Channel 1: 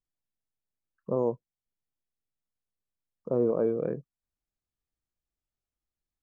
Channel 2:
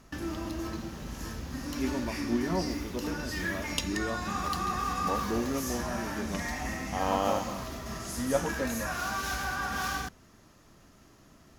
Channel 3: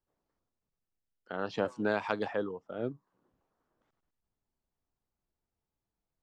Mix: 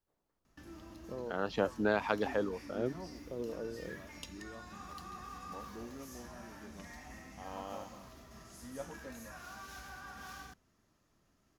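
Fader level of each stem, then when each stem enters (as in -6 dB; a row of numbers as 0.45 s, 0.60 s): -15.0 dB, -16.0 dB, 0.0 dB; 0.00 s, 0.45 s, 0.00 s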